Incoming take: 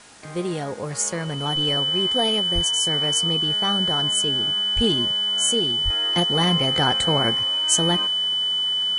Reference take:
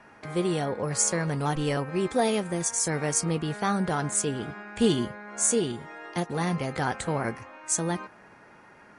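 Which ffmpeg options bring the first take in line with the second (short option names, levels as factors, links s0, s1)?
-filter_complex "[0:a]bandreject=f=3000:w=30,asplit=3[s0][s1][s2];[s0]afade=t=out:st=2.54:d=0.02[s3];[s1]highpass=f=140:w=0.5412,highpass=f=140:w=1.3066,afade=t=in:st=2.54:d=0.02,afade=t=out:st=2.66:d=0.02[s4];[s2]afade=t=in:st=2.66:d=0.02[s5];[s3][s4][s5]amix=inputs=3:normalize=0,asplit=3[s6][s7][s8];[s6]afade=t=out:st=4.75:d=0.02[s9];[s7]highpass=f=140:w=0.5412,highpass=f=140:w=1.3066,afade=t=in:st=4.75:d=0.02,afade=t=out:st=4.87:d=0.02[s10];[s8]afade=t=in:st=4.87:d=0.02[s11];[s9][s10][s11]amix=inputs=3:normalize=0,asplit=3[s12][s13][s14];[s12]afade=t=out:st=5.84:d=0.02[s15];[s13]highpass=f=140:w=0.5412,highpass=f=140:w=1.3066,afade=t=in:st=5.84:d=0.02,afade=t=out:st=5.96:d=0.02[s16];[s14]afade=t=in:st=5.96:d=0.02[s17];[s15][s16][s17]amix=inputs=3:normalize=0,afwtdn=0.005,asetnsamples=n=441:p=0,asendcmd='5.9 volume volume -6dB',volume=1"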